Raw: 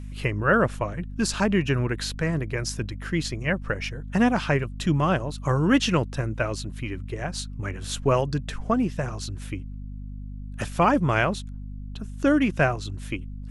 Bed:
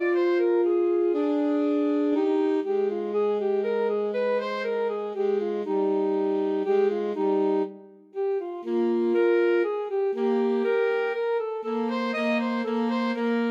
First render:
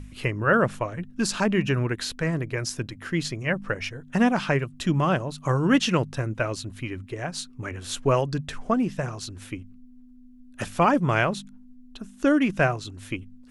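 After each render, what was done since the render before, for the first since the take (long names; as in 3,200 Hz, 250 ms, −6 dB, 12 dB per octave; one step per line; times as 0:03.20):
hum removal 50 Hz, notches 4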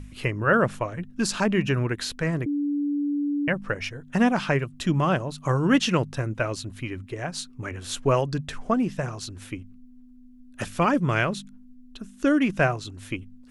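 0:02.46–0:03.48: beep over 289 Hz −22.5 dBFS
0:10.65–0:12.38: parametric band 800 Hz −5.5 dB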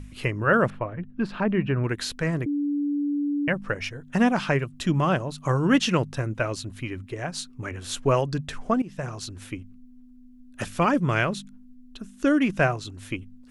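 0:00.70–0:01.84: high-frequency loss of the air 460 metres
0:08.82–0:09.25: fade in equal-power, from −18 dB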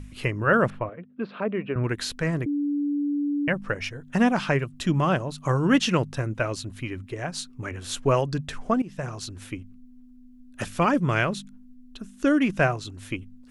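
0:00.89–0:01.76: loudspeaker in its box 280–3,600 Hz, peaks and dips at 340 Hz −4 dB, 480 Hz +5 dB, 880 Hz −7 dB, 1,700 Hz −7 dB, 2,900 Hz −4 dB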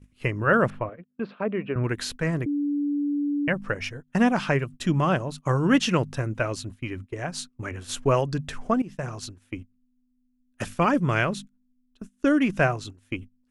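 parametric band 3,900 Hz −2 dB 0.54 octaves
noise gate −37 dBFS, range −20 dB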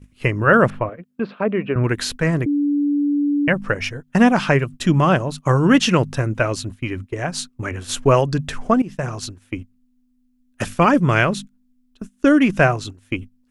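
level +7 dB
brickwall limiter −3 dBFS, peak gain reduction 2 dB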